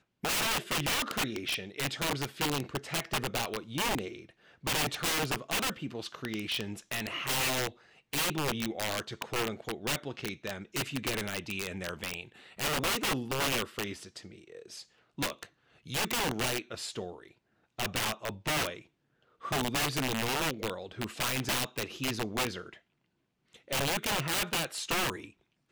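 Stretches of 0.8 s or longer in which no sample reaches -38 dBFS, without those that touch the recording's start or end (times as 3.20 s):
22.69–23.71 s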